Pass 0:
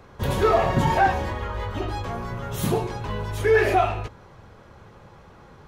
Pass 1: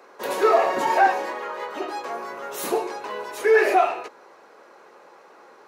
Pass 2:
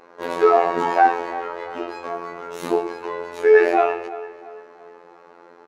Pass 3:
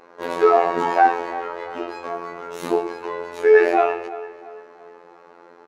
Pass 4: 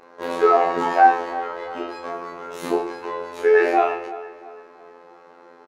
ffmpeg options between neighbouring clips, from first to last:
ffmpeg -i in.wav -af "highpass=frequency=340:width=0.5412,highpass=frequency=340:width=1.3066,equalizer=frequency=3300:width=5.9:gain=-8,volume=2dB" out.wav
ffmpeg -i in.wav -filter_complex "[0:a]afftfilt=real='hypot(re,im)*cos(PI*b)':imag='0':win_size=2048:overlap=0.75,aemphasis=mode=reproduction:type=bsi,asplit=2[link_01][link_02];[link_02]adelay=339,lowpass=frequency=3800:poles=1,volume=-16dB,asplit=2[link_03][link_04];[link_04]adelay=339,lowpass=frequency=3800:poles=1,volume=0.41,asplit=2[link_05][link_06];[link_06]adelay=339,lowpass=frequency=3800:poles=1,volume=0.41,asplit=2[link_07][link_08];[link_08]adelay=339,lowpass=frequency=3800:poles=1,volume=0.41[link_09];[link_01][link_03][link_05][link_07][link_09]amix=inputs=5:normalize=0,volume=4dB" out.wav
ffmpeg -i in.wav -af anull out.wav
ffmpeg -i in.wav -filter_complex "[0:a]asplit=2[link_01][link_02];[link_02]adelay=31,volume=-5dB[link_03];[link_01][link_03]amix=inputs=2:normalize=0,volume=-1dB" out.wav

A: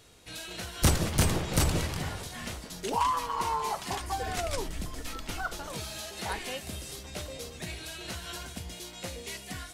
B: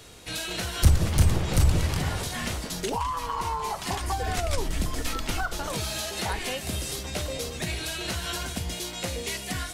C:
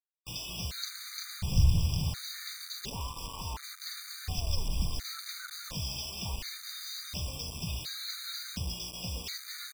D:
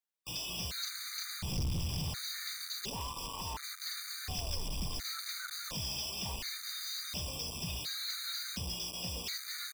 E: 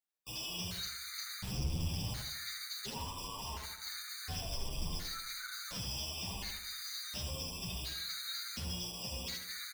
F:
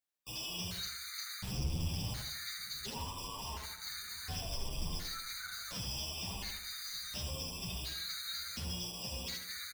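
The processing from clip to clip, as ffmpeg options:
ffmpeg -i in.wav -filter_complex "[0:a]acrossover=split=120[link_01][link_02];[link_02]acompressor=threshold=-36dB:ratio=8[link_03];[link_01][link_03]amix=inputs=2:normalize=0,volume=9dB" out.wav
ffmpeg -i in.wav -af "firequalizer=gain_entry='entry(160,0);entry(330,-16);entry(5200,7);entry(9200,-29)':delay=0.05:min_phase=1,acrusher=bits=5:mix=0:aa=0.000001,afftfilt=real='re*gt(sin(2*PI*0.7*pts/sr)*(1-2*mod(floor(b*sr/1024/1200),2)),0)':imag='im*gt(sin(2*PI*0.7*pts/sr)*(1-2*mod(floor(b*sr/1024/1200),2)),0)':win_size=1024:overlap=0.75,volume=-2.5dB" out.wav
ffmpeg -i in.wav -filter_complex "[0:a]acrossover=split=180[link_01][link_02];[link_02]acontrast=71[link_03];[link_01][link_03]amix=inputs=2:normalize=0,asoftclip=type=tanh:threshold=-25dB,volume=-5dB" out.wav
ffmpeg -i in.wav -filter_complex "[0:a]asplit=2[link_01][link_02];[link_02]adelay=79,lowpass=frequency=3200:poles=1,volume=-4dB,asplit=2[link_03][link_04];[link_04]adelay=79,lowpass=frequency=3200:poles=1,volume=0.48,asplit=2[link_05][link_06];[link_06]adelay=79,lowpass=frequency=3200:poles=1,volume=0.48,asplit=2[link_07][link_08];[link_08]adelay=79,lowpass=frequency=3200:poles=1,volume=0.48,asplit=2[link_09][link_10];[link_10]adelay=79,lowpass=frequency=3200:poles=1,volume=0.48,asplit=2[link_11][link_12];[link_12]adelay=79,lowpass=frequency=3200:poles=1,volume=0.48[link_13];[link_01][link_03][link_05][link_07][link_09][link_11][link_13]amix=inputs=7:normalize=0,asplit=2[link_14][link_15];[link_15]adelay=8.7,afreqshift=1.6[link_16];[link_14][link_16]amix=inputs=2:normalize=1" out.wav
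ffmpeg -i in.wav -filter_complex "[0:a]asplit=2[link_01][link_02];[link_02]adelay=1161,lowpass=frequency=2000:poles=1,volume=-24dB,asplit=2[link_03][link_04];[link_04]adelay=1161,lowpass=frequency=2000:poles=1,volume=0.46,asplit=2[link_05][link_06];[link_06]adelay=1161,lowpass=frequency=2000:poles=1,volume=0.46[link_07];[link_01][link_03][link_05][link_07]amix=inputs=4:normalize=0" out.wav

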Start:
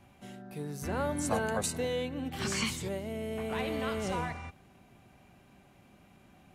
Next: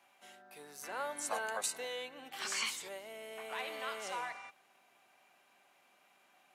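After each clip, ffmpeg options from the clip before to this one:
ffmpeg -i in.wav -af "highpass=760,volume=-2dB" out.wav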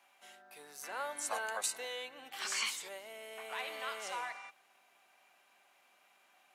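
ffmpeg -i in.wav -af "lowshelf=frequency=370:gain=-9,volume=1dB" out.wav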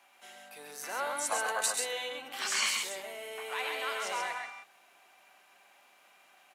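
ffmpeg -i in.wav -af "aecho=1:1:102|134.1:0.282|0.631,volume=4.5dB" out.wav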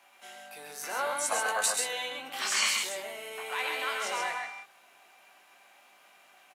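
ffmpeg -i in.wav -filter_complex "[0:a]asplit=2[link_01][link_02];[link_02]adelay=19,volume=-7dB[link_03];[link_01][link_03]amix=inputs=2:normalize=0,volume=2dB" out.wav

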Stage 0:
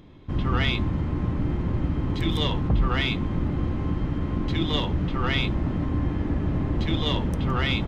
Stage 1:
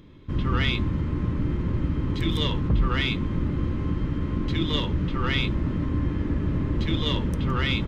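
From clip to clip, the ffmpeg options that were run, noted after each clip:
ffmpeg -i in.wav -af "equalizer=frequency=740:width_type=o:width=0.35:gain=-13" out.wav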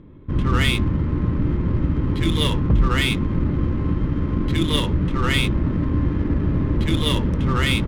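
ffmpeg -i in.wav -af "adynamicsmooth=sensitivity=7.5:basefreq=1300,volume=5dB" out.wav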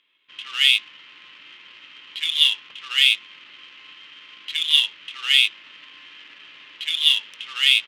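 ffmpeg -i in.wav -af "highpass=frequency=2900:width_type=q:width=4.2" out.wav

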